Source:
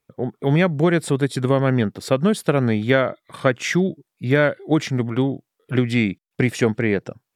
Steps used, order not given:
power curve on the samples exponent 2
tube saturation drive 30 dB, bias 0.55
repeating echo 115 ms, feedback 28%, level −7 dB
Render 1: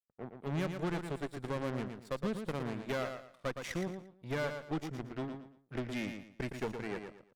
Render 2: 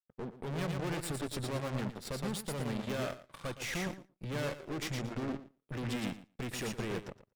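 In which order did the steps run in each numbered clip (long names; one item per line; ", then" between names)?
power curve on the samples, then tube saturation, then repeating echo
tube saturation, then repeating echo, then power curve on the samples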